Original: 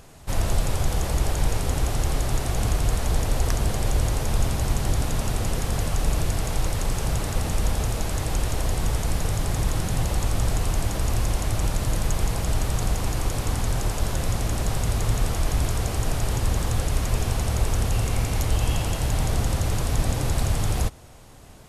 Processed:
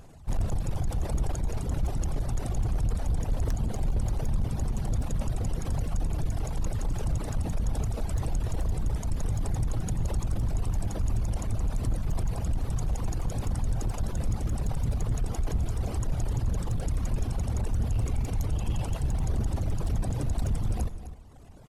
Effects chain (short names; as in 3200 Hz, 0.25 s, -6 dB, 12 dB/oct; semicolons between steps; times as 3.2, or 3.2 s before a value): formant sharpening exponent 1.5; reverb removal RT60 0.98 s; hard clip -22.5 dBFS, distortion -10 dB; echo 0.258 s -13 dB; on a send at -16 dB: reverb RT60 1.5 s, pre-delay 60 ms